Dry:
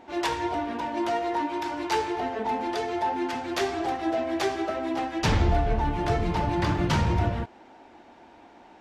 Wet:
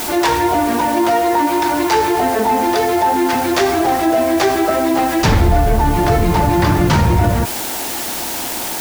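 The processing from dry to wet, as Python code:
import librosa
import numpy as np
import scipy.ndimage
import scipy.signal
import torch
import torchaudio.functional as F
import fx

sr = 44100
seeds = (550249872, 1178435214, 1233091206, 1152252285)

p1 = fx.peak_eq(x, sr, hz=3000.0, db=-3.5, octaves=0.77)
p2 = fx.quant_dither(p1, sr, seeds[0], bits=6, dither='triangular')
p3 = p1 + (p2 * 10.0 ** (-6.0 / 20.0))
p4 = fx.env_flatten(p3, sr, amount_pct=50)
y = p4 * 10.0 ** (5.5 / 20.0)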